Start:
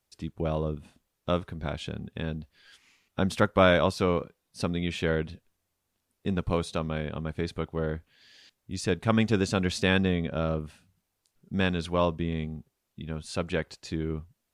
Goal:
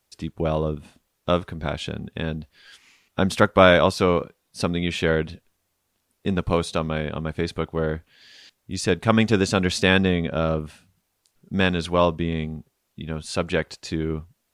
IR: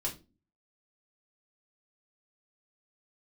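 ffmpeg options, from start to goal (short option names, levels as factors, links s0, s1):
-af "lowshelf=f=250:g=-3.5,volume=2.24"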